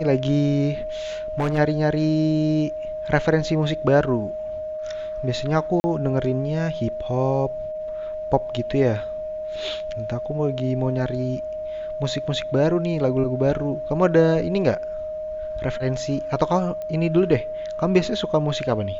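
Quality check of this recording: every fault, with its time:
whistle 620 Hz −27 dBFS
0:01.38–0:01.59: clipping −18.5 dBFS
0:05.80–0:05.84: drop-out 40 ms
0:16.82: click −21 dBFS

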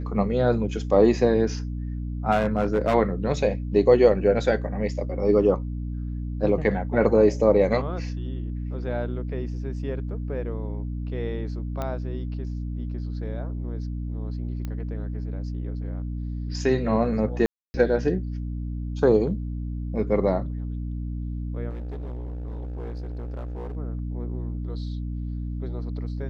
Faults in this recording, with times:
mains hum 60 Hz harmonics 5 −30 dBFS
0:02.31–0:02.95: clipping −16 dBFS
0:11.82: click −17 dBFS
0:14.65: click −20 dBFS
0:17.46–0:17.74: drop-out 280 ms
0:21.69–0:23.77: clipping −30 dBFS

